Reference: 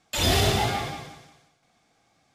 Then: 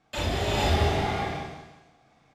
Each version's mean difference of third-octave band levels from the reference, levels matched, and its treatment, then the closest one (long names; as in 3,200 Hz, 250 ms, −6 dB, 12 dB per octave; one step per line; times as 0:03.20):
9.0 dB: low-pass filter 1,700 Hz 6 dB per octave
downward compressor 5 to 1, threshold −27 dBFS, peak gain reduction 8.5 dB
double-tracking delay 37 ms −3 dB
reverb whose tail is shaped and stops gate 490 ms rising, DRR −4 dB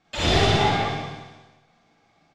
6.0 dB: wavefolder on the positive side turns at −17.5 dBFS
high-frequency loss of the air 130 metres
on a send: repeating echo 133 ms, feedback 53%, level −16.5 dB
on the sum: four-comb reverb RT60 0.32 s, DRR −3.5 dB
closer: second